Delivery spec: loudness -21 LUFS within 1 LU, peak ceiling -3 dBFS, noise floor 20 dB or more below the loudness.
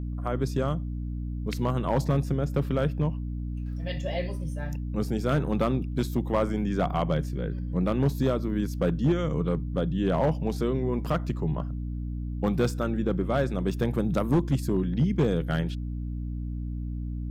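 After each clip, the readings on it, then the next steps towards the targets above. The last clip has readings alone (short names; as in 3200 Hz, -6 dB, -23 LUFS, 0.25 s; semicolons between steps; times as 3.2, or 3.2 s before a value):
clipped 0.8%; flat tops at -16.5 dBFS; hum 60 Hz; harmonics up to 300 Hz; hum level -30 dBFS; loudness -28.0 LUFS; peak -16.5 dBFS; loudness target -21.0 LUFS
-> clip repair -16.5 dBFS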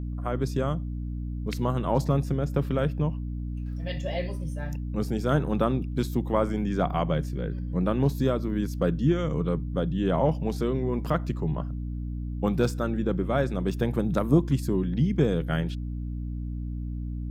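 clipped 0.0%; hum 60 Hz; harmonics up to 300 Hz; hum level -30 dBFS
-> notches 60/120/180/240/300 Hz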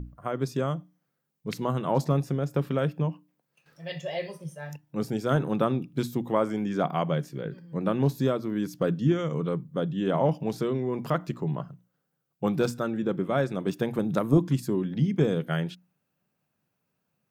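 hum none; loudness -28.5 LUFS; peak -8.5 dBFS; loudness target -21.0 LUFS
-> gain +7.5 dB; limiter -3 dBFS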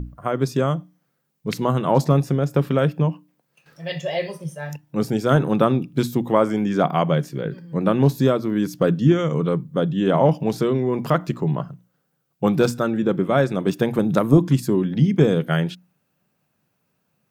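loudness -21.0 LUFS; peak -3.0 dBFS; noise floor -72 dBFS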